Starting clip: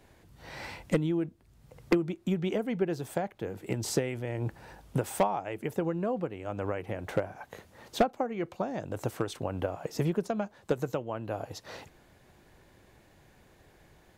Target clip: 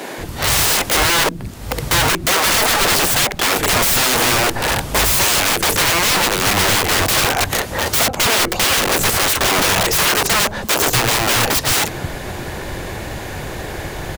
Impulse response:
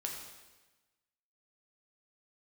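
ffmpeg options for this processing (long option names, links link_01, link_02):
-filter_complex "[0:a]asplit=2[link_01][link_02];[link_02]acompressor=threshold=-40dB:ratio=4,volume=-1dB[link_03];[link_01][link_03]amix=inputs=2:normalize=0,apsyclip=27.5dB,aeval=exprs='(mod(3.35*val(0)+1,2)-1)/3.35':channel_layout=same,acrossover=split=210[link_04][link_05];[link_04]adelay=180[link_06];[link_06][link_05]amix=inputs=2:normalize=0"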